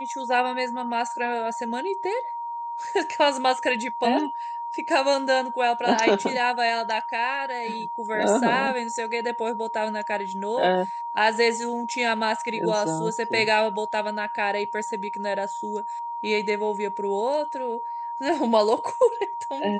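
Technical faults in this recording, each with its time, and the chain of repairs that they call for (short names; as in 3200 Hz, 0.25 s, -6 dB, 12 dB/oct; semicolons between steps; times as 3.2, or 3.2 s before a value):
tone 940 Hz -29 dBFS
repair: notch 940 Hz, Q 30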